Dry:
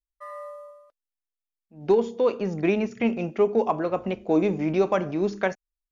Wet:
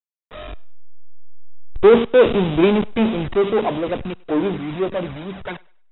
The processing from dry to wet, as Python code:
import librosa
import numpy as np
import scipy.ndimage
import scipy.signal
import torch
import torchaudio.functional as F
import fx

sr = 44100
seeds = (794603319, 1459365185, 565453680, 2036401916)

p1 = fx.delta_hold(x, sr, step_db=-30.5)
p2 = fx.doppler_pass(p1, sr, speed_mps=13, closest_m=9.5, pass_at_s=2.13)
p3 = fx.low_shelf(p2, sr, hz=170.0, db=-6.5)
p4 = fx.level_steps(p3, sr, step_db=11)
p5 = p3 + (p4 * librosa.db_to_amplitude(-2.5))
p6 = fx.env_flanger(p5, sr, rest_ms=4.9, full_db=-27.0)
p7 = fx.power_curve(p6, sr, exponent=0.5)
p8 = fx.brickwall_lowpass(p7, sr, high_hz=3900.0)
p9 = p8 + fx.echo_thinned(p8, sr, ms=100, feedback_pct=42, hz=430.0, wet_db=-22, dry=0)
p10 = fx.band_widen(p9, sr, depth_pct=70)
y = p10 * librosa.db_to_amplitude(2.0)